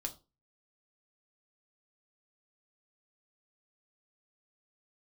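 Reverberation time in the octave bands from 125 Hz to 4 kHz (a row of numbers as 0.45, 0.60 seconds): 0.40, 0.35, 0.30, 0.30, 0.20, 0.25 seconds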